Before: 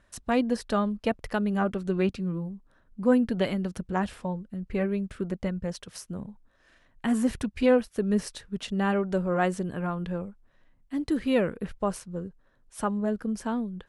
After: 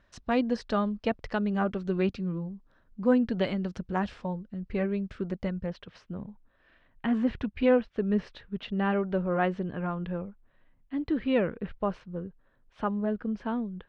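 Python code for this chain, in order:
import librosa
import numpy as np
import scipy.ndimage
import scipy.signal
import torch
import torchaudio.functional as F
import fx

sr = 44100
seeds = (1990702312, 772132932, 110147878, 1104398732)

y = fx.lowpass(x, sr, hz=fx.steps((0.0, 5600.0), (5.66, 3500.0)), slope=24)
y = y * librosa.db_to_amplitude(-1.5)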